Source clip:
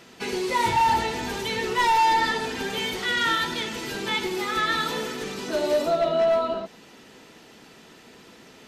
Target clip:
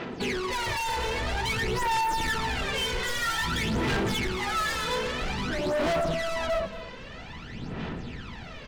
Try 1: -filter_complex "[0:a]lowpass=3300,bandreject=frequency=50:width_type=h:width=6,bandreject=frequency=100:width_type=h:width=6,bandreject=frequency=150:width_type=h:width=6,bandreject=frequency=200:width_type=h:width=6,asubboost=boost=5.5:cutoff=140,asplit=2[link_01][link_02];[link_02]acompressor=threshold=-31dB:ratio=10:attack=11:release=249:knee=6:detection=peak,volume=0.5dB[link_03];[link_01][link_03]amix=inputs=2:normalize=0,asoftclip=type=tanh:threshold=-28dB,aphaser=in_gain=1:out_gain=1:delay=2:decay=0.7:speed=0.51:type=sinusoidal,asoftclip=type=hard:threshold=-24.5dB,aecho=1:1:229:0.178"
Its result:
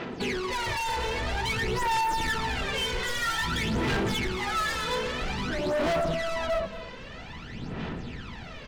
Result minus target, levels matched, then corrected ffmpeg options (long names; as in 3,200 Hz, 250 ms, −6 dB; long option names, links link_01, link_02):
downward compressor: peak gain reduction +6.5 dB
-filter_complex "[0:a]lowpass=3300,bandreject=frequency=50:width_type=h:width=6,bandreject=frequency=100:width_type=h:width=6,bandreject=frequency=150:width_type=h:width=6,bandreject=frequency=200:width_type=h:width=6,asubboost=boost=5.5:cutoff=140,asplit=2[link_01][link_02];[link_02]acompressor=threshold=-23.5dB:ratio=10:attack=11:release=249:knee=6:detection=peak,volume=0.5dB[link_03];[link_01][link_03]amix=inputs=2:normalize=0,asoftclip=type=tanh:threshold=-28dB,aphaser=in_gain=1:out_gain=1:delay=2:decay=0.7:speed=0.51:type=sinusoidal,asoftclip=type=hard:threshold=-24.5dB,aecho=1:1:229:0.178"